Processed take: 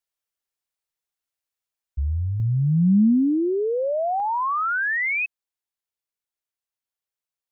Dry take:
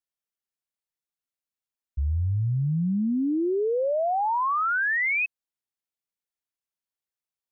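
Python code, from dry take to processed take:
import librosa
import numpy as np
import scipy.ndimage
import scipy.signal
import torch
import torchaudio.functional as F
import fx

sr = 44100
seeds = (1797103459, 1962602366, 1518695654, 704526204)

y = fx.peak_eq(x, sr, hz=210.0, db=fx.steps((0.0, -9.0), (2.4, 9.0), (4.2, -8.0)), octaves=1.0)
y = fx.rider(y, sr, range_db=4, speed_s=2.0)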